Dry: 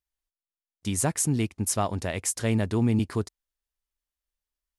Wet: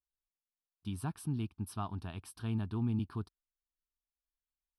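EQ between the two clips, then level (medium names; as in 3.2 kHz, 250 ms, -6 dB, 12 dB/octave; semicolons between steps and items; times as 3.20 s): treble shelf 2.8 kHz -9 dB; static phaser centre 2 kHz, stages 6; -8.0 dB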